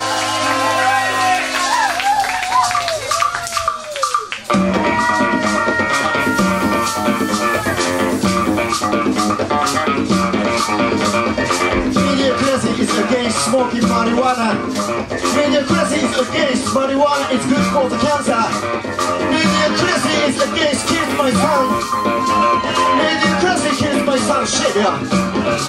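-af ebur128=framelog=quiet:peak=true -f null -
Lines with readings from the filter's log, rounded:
Integrated loudness:
  I:         -15.6 LUFS
  Threshold: -25.6 LUFS
Loudness range:
  LRA:         1.5 LU
  Threshold: -35.7 LUFS
  LRA low:   -16.3 LUFS
  LRA high:  -14.8 LUFS
True peak:
  Peak:       -2.1 dBFS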